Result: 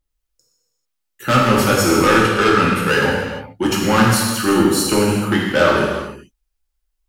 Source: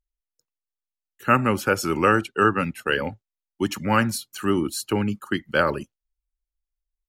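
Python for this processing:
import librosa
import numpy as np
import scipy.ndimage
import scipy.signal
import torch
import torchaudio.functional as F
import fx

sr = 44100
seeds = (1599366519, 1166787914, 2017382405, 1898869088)

y = 10.0 ** (-19.5 / 20.0) * np.tanh(x / 10.0 ** (-19.5 / 20.0))
y = fx.rev_gated(y, sr, seeds[0], gate_ms=470, shape='falling', drr_db=-4.5)
y = F.gain(torch.from_numpy(y), 6.5).numpy()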